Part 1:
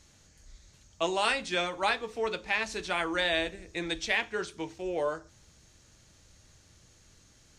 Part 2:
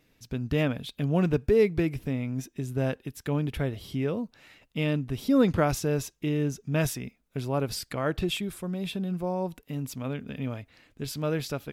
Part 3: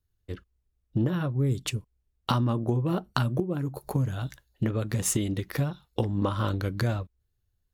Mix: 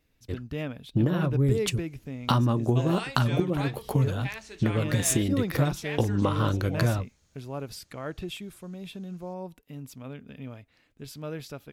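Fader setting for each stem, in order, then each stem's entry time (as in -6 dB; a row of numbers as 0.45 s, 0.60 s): -9.0 dB, -7.5 dB, +2.0 dB; 1.75 s, 0.00 s, 0.00 s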